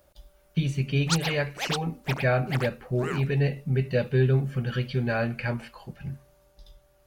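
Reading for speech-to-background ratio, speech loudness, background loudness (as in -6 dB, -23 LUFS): 7.0 dB, -27.0 LUFS, -34.0 LUFS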